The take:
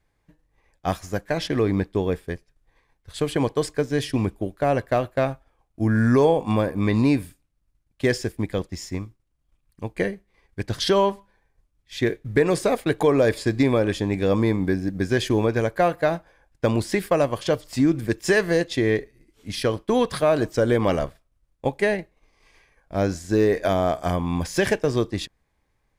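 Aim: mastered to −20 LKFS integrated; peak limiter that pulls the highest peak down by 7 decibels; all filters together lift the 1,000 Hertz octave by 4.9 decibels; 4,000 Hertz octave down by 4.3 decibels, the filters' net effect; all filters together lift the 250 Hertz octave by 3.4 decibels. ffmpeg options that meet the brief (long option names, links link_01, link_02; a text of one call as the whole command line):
ffmpeg -i in.wav -af "equalizer=frequency=250:width_type=o:gain=4,equalizer=frequency=1000:width_type=o:gain=6.5,equalizer=frequency=4000:width_type=o:gain=-6,volume=3.5dB,alimiter=limit=-8dB:level=0:latency=1" out.wav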